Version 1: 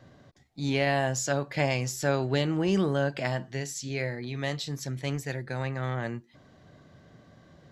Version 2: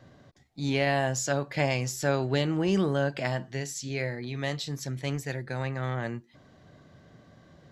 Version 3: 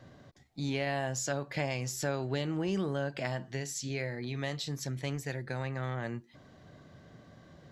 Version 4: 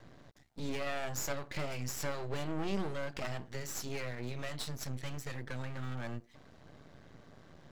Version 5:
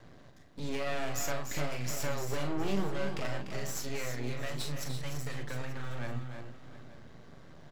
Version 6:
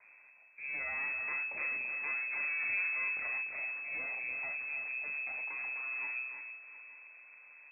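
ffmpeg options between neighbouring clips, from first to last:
-af anull
-af "acompressor=threshold=0.02:ratio=2"
-af "aeval=exprs='max(val(0),0)':c=same,volume=1.26"
-af "aecho=1:1:41|295|335|712|883:0.422|0.355|0.376|0.133|0.119,volume=1.12"
-af "lowpass=f=2200:t=q:w=0.5098,lowpass=f=2200:t=q:w=0.6013,lowpass=f=2200:t=q:w=0.9,lowpass=f=2200:t=q:w=2.563,afreqshift=-2600,volume=0.501"

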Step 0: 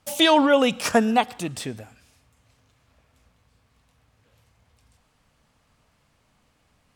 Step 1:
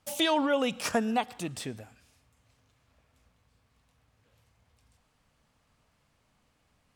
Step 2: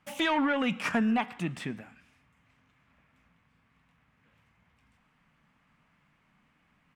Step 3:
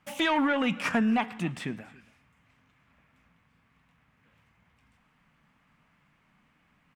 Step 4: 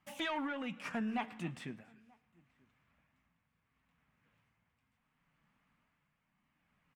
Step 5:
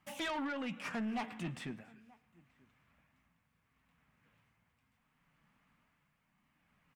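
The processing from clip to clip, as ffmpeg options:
-af "acompressor=threshold=0.0708:ratio=1.5,volume=0.531"
-af "asoftclip=type=tanh:threshold=0.0794,firequalizer=gain_entry='entry(110,0);entry(160,12);entry(480,0);entry(990,8);entry(2100,12);entry(4200,-3);entry(12000,-7)':delay=0.05:min_phase=1,flanger=delay=1.8:depth=6.6:regen=-86:speed=0.43:shape=triangular"
-af "aecho=1:1:278:0.075,volume=1.19"
-filter_complex "[0:a]flanger=delay=1:depth=7.2:regen=-65:speed=0.31:shape=sinusoidal,tremolo=f=0.72:d=0.46,asplit=2[s0][s1];[s1]adelay=932.9,volume=0.0398,highshelf=f=4000:g=-21[s2];[s0][s2]amix=inputs=2:normalize=0,volume=0.562"
-af "asoftclip=type=tanh:threshold=0.0158,volume=1.41"

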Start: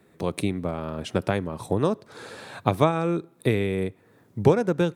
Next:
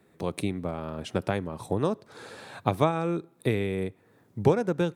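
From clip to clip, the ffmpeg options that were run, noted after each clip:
-af "equalizer=f=800:w=6.3:g=2,volume=0.668"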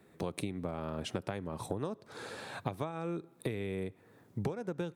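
-af "acompressor=threshold=0.0251:ratio=12"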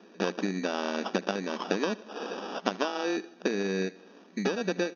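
-af "acrusher=samples=21:mix=1:aa=0.000001,aecho=1:1:77|154|231|308:0.0841|0.0488|0.0283|0.0164,afftfilt=real='re*between(b*sr/4096,180,6600)':imag='im*between(b*sr/4096,180,6600)':win_size=4096:overlap=0.75,volume=2.66"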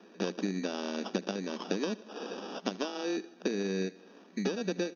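-filter_complex "[0:a]acrossover=split=500|3000[s0][s1][s2];[s1]acompressor=threshold=0.00251:ratio=1.5[s3];[s0][s3][s2]amix=inputs=3:normalize=0,volume=0.841"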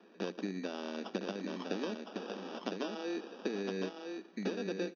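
-af "highpass=170,lowpass=4600,aecho=1:1:1010:0.562,volume=0.596"

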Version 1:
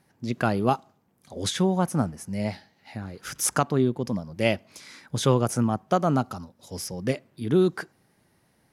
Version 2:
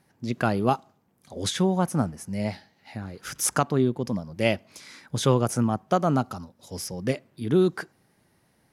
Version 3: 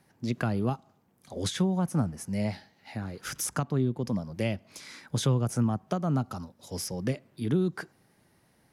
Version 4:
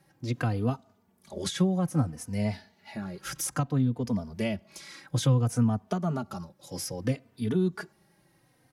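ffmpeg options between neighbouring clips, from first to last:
-af anull
-filter_complex "[0:a]acrossover=split=210[s0][s1];[s1]acompressor=threshold=0.0316:ratio=6[s2];[s0][s2]amix=inputs=2:normalize=0"
-filter_complex "[0:a]asplit=2[s0][s1];[s1]adelay=3.2,afreqshift=-0.61[s2];[s0][s2]amix=inputs=2:normalize=1,volume=1.41"

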